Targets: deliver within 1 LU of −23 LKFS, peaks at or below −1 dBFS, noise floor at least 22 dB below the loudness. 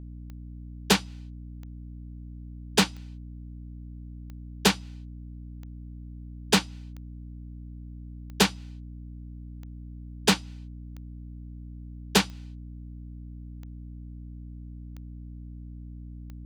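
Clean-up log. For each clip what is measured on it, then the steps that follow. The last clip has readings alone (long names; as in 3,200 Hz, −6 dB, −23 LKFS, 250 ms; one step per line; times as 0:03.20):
number of clicks 13; mains hum 60 Hz; hum harmonics up to 300 Hz; level of the hum −38 dBFS; integrated loudness −25.5 LKFS; sample peak −5.0 dBFS; target loudness −23.0 LKFS
→ click removal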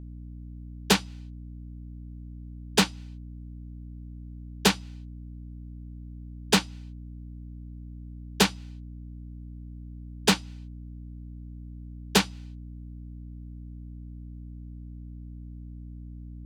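number of clicks 0; mains hum 60 Hz; hum harmonics up to 300 Hz; level of the hum −38 dBFS
→ hum removal 60 Hz, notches 5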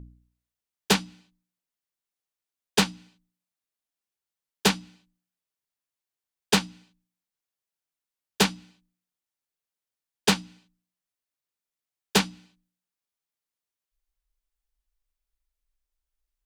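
mains hum none found; integrated loudness −26.0 LKFS; sample peak −5.0 dBFS; target loudness −23.0 LKFS
→ level +3 dB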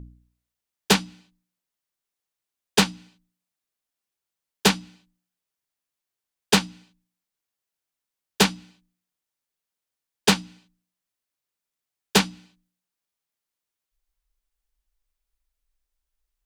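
integrated loudness −23.0 LKFS; sample peak −2.0 dBFS; background noise floor −87 dBFS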